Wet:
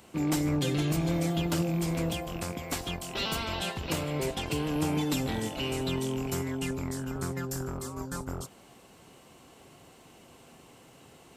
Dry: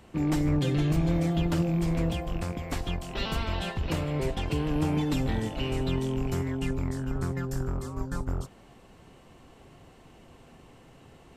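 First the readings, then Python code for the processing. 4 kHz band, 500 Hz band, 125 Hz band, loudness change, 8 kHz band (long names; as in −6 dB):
+3.5 dB, −0.5 dB, −4.0 dB, −2.0 dB, +7.5 dB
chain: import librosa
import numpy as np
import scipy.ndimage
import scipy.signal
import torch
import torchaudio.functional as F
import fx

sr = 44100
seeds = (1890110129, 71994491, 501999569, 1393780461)

y = fx.highpass(x, sr, hz=170.0, slope=6)
y = fx.high_shelf(y, sr, hz=5200.0, db=11.0)
y = fx.notch(y, sr, hz=1800.0, q=24.0)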